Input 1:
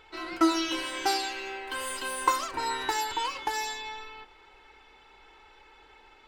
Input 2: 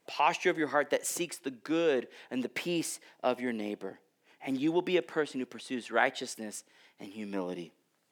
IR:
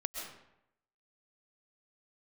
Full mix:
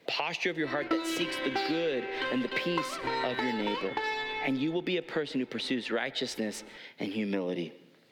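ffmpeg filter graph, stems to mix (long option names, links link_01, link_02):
-filter_complex "[0:a]adynamicsmooth=sensitivity=4:basefreq=1800,adelay=500,volume=-2dB[link_01];[1:a]acrossover=split=180|3000[link_02][link_03][link_04];[link_03]acompressor=threshold=-34dB:ratio=3[link_05];[link_02][link_05][link_04]amix=inputs=3:normalize=0,volume=2dB,asplit=2[link_06][link_07];[link_07]volume=-21.5dB[link_08];[2:a]atrim=start_sample=2205[link_09];[link_08][link_09]afir=irnorm=-1:irlink=0[link_10];[link_01][link_06][link_10]amix=inputs=3:normalize=0,equalizer=frequency=125:width_type=o:width=1:gain=11,equalizer=frequency=250:width_type=o:width=1:gain=6,equalizer=frequency=500:width_type=o:width=1:gain=10,equalizer=frequency=2000:width_type=o:width=1:gain=9,equalizer=frequency=4000:width_type=o:width=1:gain=11,equalizer=frequency=8000:width_type=o:width=1:gain=-6,acompressor=threshold=-29dB:ratio=4"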